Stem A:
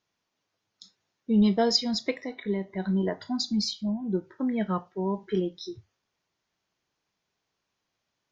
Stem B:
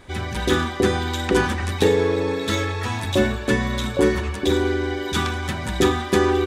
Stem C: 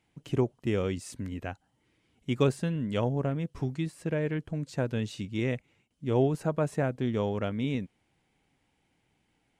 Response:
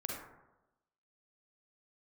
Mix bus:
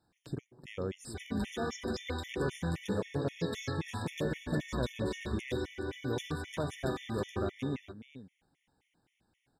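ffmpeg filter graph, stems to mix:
-filter_complex "[0:a]volume=-3.5dB[link_01];[1:a]alimiter=limit=-15dB:level=0:latency=1:release=162,adelay=1050,volume=-11.5dB,asplit=2[link_02][link_03];[link_03]volume=-9dB[link_04];[2:a]alimiter=level_in=1dB:limit=-24dB:level=0:latency=1:release=220,volume=-1dB,volume=-1.5dB,asplit=4[link_05][link_06][link_07][link_08];[link_06]volume=-19.5dB[link_09];[link_07]volume=-11.5dB[link_10];[link_08]apad=whole_len=366580[link_11];[link_01][link_11]sidechaincompress=threshold=-43dB:ratio=8:attack=16:release=1430[link_12];[3:a]atrim=start_sample=2205[link_13];[link_09][link_13]afir=irnorm=-1:irlink=0[link_14];[link_04][link_10]amix=inputs=2:normalize=0,aecho=0:1:422:1[link_15];[link_12][link_02][link_05][link_14][link_15]amix=inputs=5:normalize=0,afftfilt=real='re*gt(sin(2*PI*3.8*pts/sr)*(1-2*mod(floor(b*sr/1024/1800),2)),0)':imag='im*gt(sin(2*PI*3.8*pts/sr)*(1-2*mod(floor(b*sr/1024/1800),2)),0)':win_size=1024:overlap=0.75"

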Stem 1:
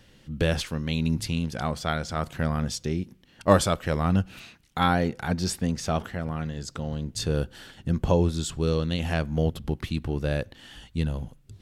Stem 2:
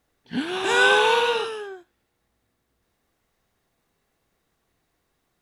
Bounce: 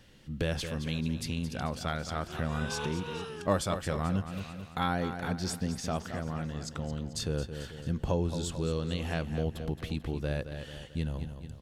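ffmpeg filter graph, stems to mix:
ffmpeg -i stem1.wav -i stem2.wav -filter_complex "[0:a]volume=-2.5dB,asplit=3[link_01][link_02][link_03];[link_02]volume=-11dB[link_04];[1:a]adelay=1800,volume=-10.5dB[link_05];[link_03]apad=whole_len=318088[link_06];[link_05][link_06]sidechaincompress=threshold=-36dB:ratio=5:attack=16:release=323[link_07];[link_04]aecho=0:1:220|440|660|880|1100|1320:1|0.46|0.212|0.0973|0.0448|0.0206[link_08];[link_01][link_07][link_08]amix=inputs=3:normalize=0,acompressor=threshold=-35dB:ratio=1.5" out.wav

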